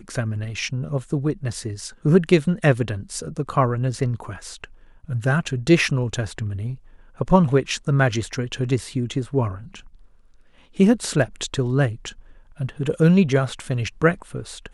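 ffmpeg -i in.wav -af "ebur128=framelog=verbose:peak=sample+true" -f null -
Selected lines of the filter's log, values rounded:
Integrated loudness:
  I:         -22.1 LUFS
  Threshold: -32.8 LUFS
Loudness range:
  LRA:         3.0 LU
  Threshold: -42.8 LUFS
  LRA low:   -24.4 LUFS
  LRA high:  -21.4 LUFS
Sample peak:
  Peak:       -2.8 dBFS
True peak:
  Peak:       -2.8 dBFS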